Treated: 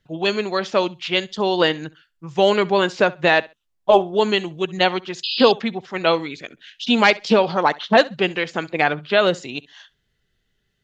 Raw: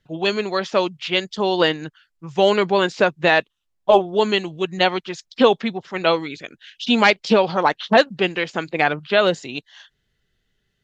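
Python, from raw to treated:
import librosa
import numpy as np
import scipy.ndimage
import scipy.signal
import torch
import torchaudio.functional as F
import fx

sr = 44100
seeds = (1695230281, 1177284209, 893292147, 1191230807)

y = fx.echo_feedback(x, sr, ms=66, feedback_pct=19, wet_db=-21.5)
y = fx.spec_paint(y, sr, seeds[0], shape='noise', start_s=5.23, length_s=0.29, low_hz=2500.0, high_hz=5100.0, level_db=-25.0)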